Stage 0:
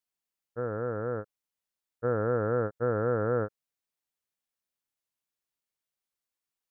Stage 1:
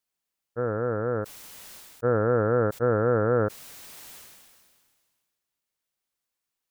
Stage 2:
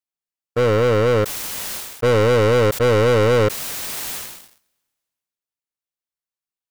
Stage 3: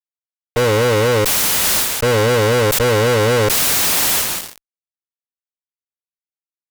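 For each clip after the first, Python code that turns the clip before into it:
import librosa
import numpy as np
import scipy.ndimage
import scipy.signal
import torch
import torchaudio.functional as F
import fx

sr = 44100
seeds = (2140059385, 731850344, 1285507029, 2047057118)

y1 = fx.sustainer(x, sr, db_per_s=31.0)
y1 = y1 * librosa.db_to_amplitude(4.5)
y2 = fx.leveller(y1, sr, passes=5)
y3 = fx.tremolo_shape(y2, sr, shape='saw_down', hz=0.61, depth_pct=45)
y3 = fx.fuzz(y3, sr, gain_db=41.0, gate_db=-45.0)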